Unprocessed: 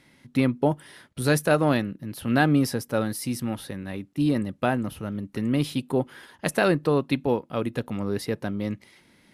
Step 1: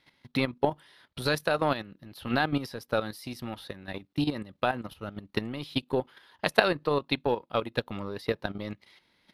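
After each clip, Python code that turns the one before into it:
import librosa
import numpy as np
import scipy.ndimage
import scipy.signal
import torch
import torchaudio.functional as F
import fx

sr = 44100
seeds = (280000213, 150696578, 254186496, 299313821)

y = fx.transient(x, sr, attack_db=10, sustain_db=-2)
y = fx.graphic_eq(y, sr, hz=(125, 250, 1000, 4000, 8000), db=(-4, -5, 4, 9, -9))
y = fx.level_steps(y, sr, step_db=11)
y = y * 10.0 ** (-2.5 / 20.0)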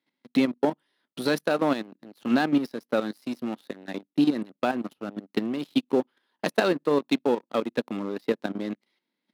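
y = fx.low_shelf(x, sr, hz=390.0, db=6.0)
y = fx.leveller(y, sr, passes=3)
y = fx.ladder_highpass(y, sr, hz=200.0, resonance_pct=40)
y = y * 10.0 ** (-3.0 / 20.0)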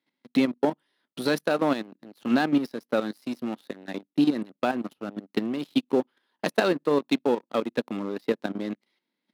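y = x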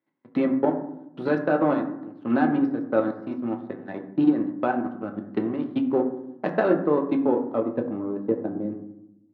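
y = fx.filter_sweep_lowpass(x, sr, from_hz=1500.0, to_hz=500.0, start_s=6.5, end_s=9.06, q=0.77)
y = fx.rev_fdn(y, sr, rt60_s=0.8, lf_ratio=1.55, hf_ratio=0.45, size_ms=54.0, drr_db=3.0)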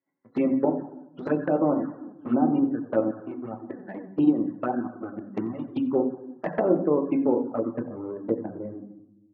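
y = fx.spec_topn(x, sr, count=64)
y = fx.env_flanger(y, sr, rest_ms=10.8, full_db=-18.5)
y = fx.echo_feedback(y, sr, ms=89, feedback_pct=43, wet_db=-21)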